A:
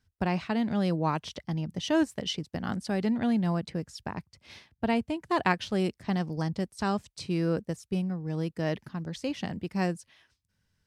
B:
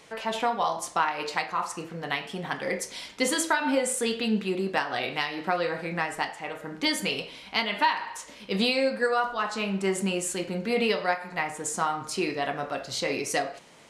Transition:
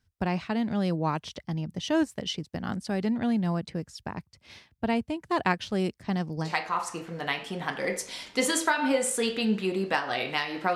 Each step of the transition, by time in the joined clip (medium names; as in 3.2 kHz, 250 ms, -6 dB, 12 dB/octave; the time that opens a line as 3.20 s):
A
6.48 s: go over to B from 1.31 s, crossfade 0.12 s